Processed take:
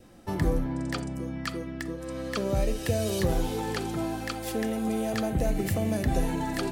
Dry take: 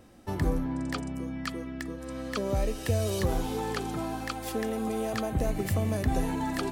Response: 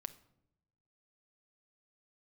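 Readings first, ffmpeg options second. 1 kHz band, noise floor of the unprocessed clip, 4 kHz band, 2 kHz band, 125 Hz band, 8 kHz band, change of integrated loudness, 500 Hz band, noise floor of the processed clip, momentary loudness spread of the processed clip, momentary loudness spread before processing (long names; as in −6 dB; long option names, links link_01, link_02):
0.0 dB, −40 dBFS, +2.0 dB, +1.5 dB, +0.5 dB, +2.0 dB, +1.5 dB, +1.5 dB, −38 dBFS, 7 LU, 7 LU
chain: -filter_complex "[0:a]adynamicequalizer=threshold=0.00251:dfrequency=1100:dqfactor=3:tfrequency=1100:tqfactor=3:attack=5:release=100:ratio=0.375:range=3:mode=cutabove:tftype=bell[link_01];[1:a]atrim=start_sample=2205,afade=type=out:start_time=0.14:duration=0.01,atrim=end_sample=6615[link_02];[link_01][link_02]afir=irnorm=-1:irlink=0,volume=5.5dB"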